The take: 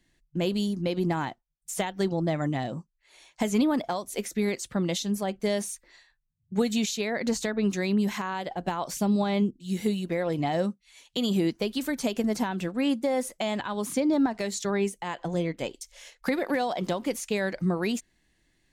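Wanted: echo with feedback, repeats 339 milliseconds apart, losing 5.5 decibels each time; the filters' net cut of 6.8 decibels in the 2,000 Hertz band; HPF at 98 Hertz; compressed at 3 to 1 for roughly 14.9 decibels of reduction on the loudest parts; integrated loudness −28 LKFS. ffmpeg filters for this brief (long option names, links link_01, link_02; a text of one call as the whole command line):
ffmpeg -i in.wav -af "highpass=98,equalizer=frequency=2000:width_type=o:gain=-8.5,acompressor=threshold=-42dB:ratio=3,aecho=1:1:339|678|1017|1356|1695|2034|2373:0.531|0.281|0.149|0.079|0.0419|0.0222|0.0118,volume=12.5dB" out.wav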